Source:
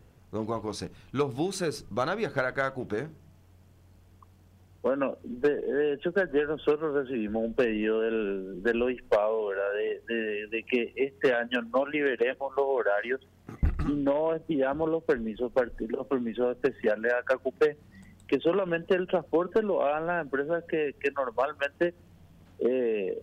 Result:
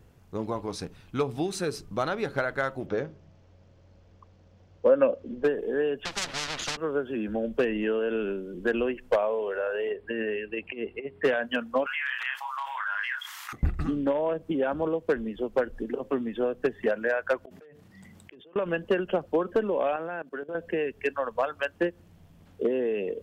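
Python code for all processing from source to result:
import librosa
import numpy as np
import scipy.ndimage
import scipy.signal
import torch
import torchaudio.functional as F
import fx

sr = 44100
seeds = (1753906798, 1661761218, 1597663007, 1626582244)

y = fx.chain(x, sr, fx.steep_lowpass(hz=6300.0, slope=36),
    fx.peak_eq(hz=540.0, db=10.0, octaves=0.35), at=(2.86, 5.44))
y = fx.chain(y, sr, fx.lower_of_two(delay_ms=1.5),
    fx.lowpass(hz=5600.0, slope=12),
    fx.spectral_comp(ratio=10.0), at=(6.05, 6.77))
y = fx.chain(y, sr, fx.over_compress(threshold_db=-30.0, ratio=-0.5),
    fx.moving_average(points=7), at=(9.91, 11.24))
y = fx.chain(y, sr, fx.steep_highpass(hz=1000.0, slope=48),
    fx.doubler(ms=30.0, db=-6.0),
    fx.env_flatten(amount_pct=70), at=(11.86, 13.53))
y = fx.chain(y, sr, fx.highpass(hz=100.0, slope=12),
    fx.gate_flip(shuts_db=-33.0, range_db=-33),
    fx.sustainer(db_per_s=21.0), at=(17.44, 18.56))
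y = fx.chain(y, sr, fx.highpass(hz=180.0, slope=12),
    fx.level_steps(step_db=17), at=(19.96, 20.55))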